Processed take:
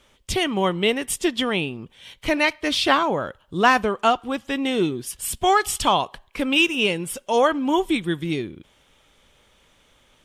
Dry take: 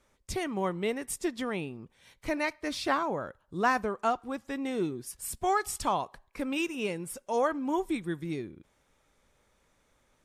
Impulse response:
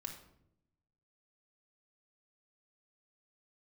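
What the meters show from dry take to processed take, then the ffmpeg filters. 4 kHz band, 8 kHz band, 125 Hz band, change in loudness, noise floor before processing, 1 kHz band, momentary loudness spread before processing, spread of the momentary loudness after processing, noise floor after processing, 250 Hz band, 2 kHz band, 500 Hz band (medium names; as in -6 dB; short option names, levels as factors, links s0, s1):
+17.5 dB, +9.5 dB, +9.0 dB, +10.0 dB, -70 dBFS, +9.5 dB, 9 LU, 10 LU, -60 dBFS, +9.0 dB, +12.0 dB, +9.0 dB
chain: -af "equalizer=f=3100:w=2.7:g=12.5,volume=2.82"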